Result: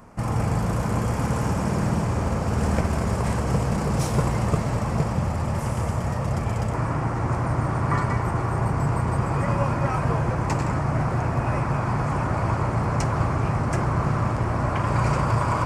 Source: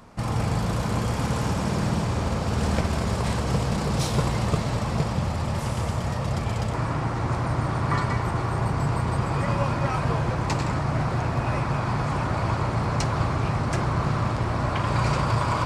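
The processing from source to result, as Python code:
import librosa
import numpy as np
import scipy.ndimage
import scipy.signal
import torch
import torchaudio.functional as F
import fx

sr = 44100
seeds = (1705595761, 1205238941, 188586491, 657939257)

y = fx.peak_eq(x, sr, hz=3800.0, db=-11.5, octaves=0.81)
y = y * librosa.db_to_amplitude(1.5)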